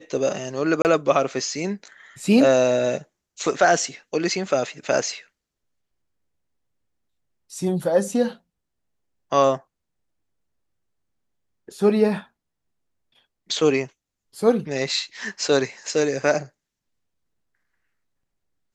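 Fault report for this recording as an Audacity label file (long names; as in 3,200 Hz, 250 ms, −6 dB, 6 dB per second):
0.820000	0.850000	drop-out 29 ms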